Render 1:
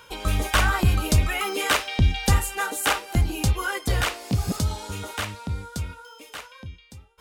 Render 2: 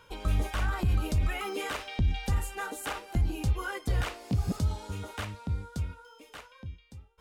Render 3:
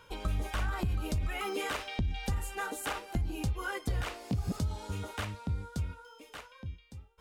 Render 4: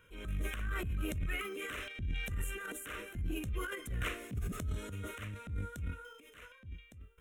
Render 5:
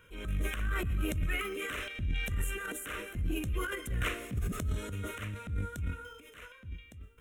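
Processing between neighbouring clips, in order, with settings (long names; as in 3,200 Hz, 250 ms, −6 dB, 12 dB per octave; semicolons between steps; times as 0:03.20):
brickwall limiter −16 dBFS, peak gain reduction 7.5 dB; spectral tilt −1.5 dB per octave; level −7.5 dB
downward compressor, threshold −28 dBFS, peak gain reduction 7 dB
phaser with its sweep stopped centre 2,000 Hz, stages 4; transient designer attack −9 dB, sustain +10 dB; level −4 dB
dense smooth reverb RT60 0.56 s, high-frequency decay 0.95×, pre-delay 105 ms, DRR 19 dB; level +4 dB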